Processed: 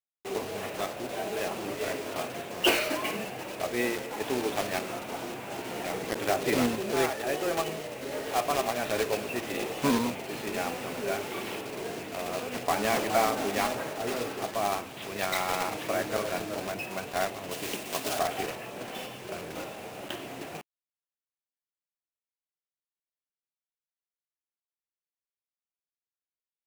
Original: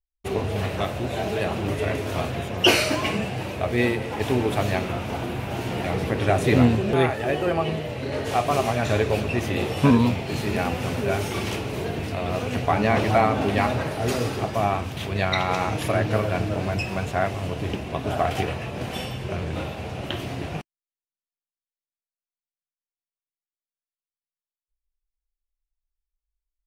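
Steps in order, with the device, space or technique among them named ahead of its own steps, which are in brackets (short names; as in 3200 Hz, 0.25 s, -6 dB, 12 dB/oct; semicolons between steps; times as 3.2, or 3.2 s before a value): early digital voice recorder (BPF 270–3500 Hz; block floating point 3-bit); 17.51–18.19 high shelf 2400 Hz +10.5 dB; gain -5.5 dB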